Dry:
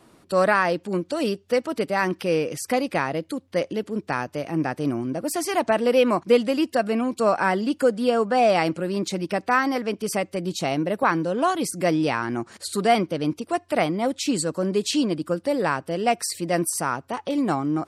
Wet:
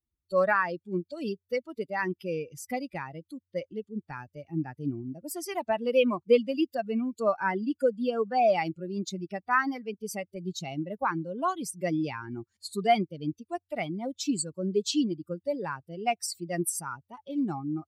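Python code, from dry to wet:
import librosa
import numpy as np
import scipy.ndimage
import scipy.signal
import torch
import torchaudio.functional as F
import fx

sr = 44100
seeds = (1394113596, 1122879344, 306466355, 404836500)

y = fx.bin_expand(x, sr, power=2.0)
y = y * librosa.db_to_amplitude(-1.5)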